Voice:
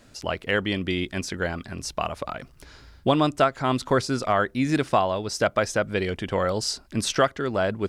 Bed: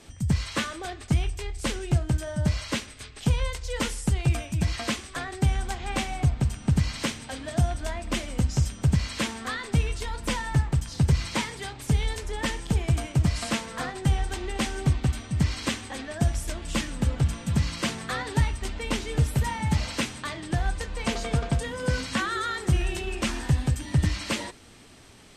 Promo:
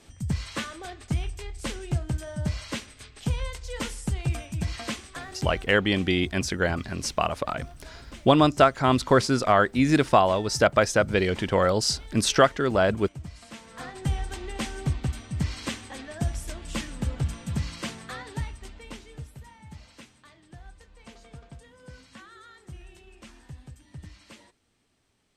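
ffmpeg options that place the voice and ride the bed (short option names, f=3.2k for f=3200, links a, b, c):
-filter_complex "[0:a]adelay=5200,volume=2.5dB[a];[1:a]volume=9dB,afade=t=out:st=5.08:d=0.7:silence=0.223872,afade=t=in:st=13.52:d=0.51:silence=0.223872,afade=t=out:st=17.38:d=1.99:silence=0.149624[b];[a][b]amix=inputs=2:normalize=0"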